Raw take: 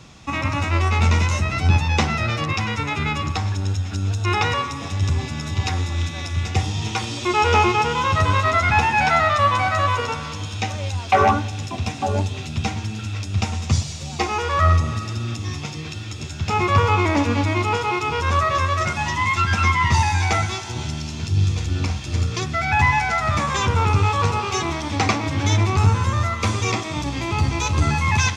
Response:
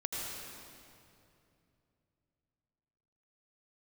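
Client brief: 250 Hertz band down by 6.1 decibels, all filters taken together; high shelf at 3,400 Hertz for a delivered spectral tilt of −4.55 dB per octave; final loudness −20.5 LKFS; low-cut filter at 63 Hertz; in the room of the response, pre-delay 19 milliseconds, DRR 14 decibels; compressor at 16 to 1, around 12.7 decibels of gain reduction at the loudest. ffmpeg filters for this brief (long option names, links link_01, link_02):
-filter_complex "[0:a]highpass=63,equalizer=frequency=250:width_type=o:gain=-9,highshelf=frequency=3400:gain=-3,acompressor=threshold=-25dB:ratio=16,asplit=2[link_01][link_02];[1:a]atrim=start_sample=2205,adelay=19[link_03];[link_02][link_03]afir=irnorm=-1:irlink=0,volume=-17.5dB[link_04];[link_01][link_04]amix=inputs=2:normalize=0,volume=9dB"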